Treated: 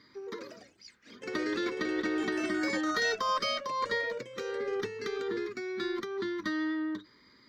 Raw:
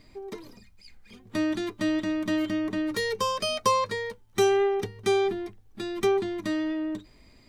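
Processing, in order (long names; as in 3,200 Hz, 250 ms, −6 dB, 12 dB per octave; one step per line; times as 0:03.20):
compressor whose output falls as the input rises −28 dBFS, ratio −1
phaser with its sweep stopped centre 2,600 Hz, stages 6
delay with pitch and tempo change per echo 139 ms, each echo +3 semitones, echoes 3, each echo −6 dB
meter weighting curve A
harmonic generator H 6 −35 dB, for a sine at −18 dBFS
high-shelf EQ 3,200 Hz −9.5 dB
level +4 dB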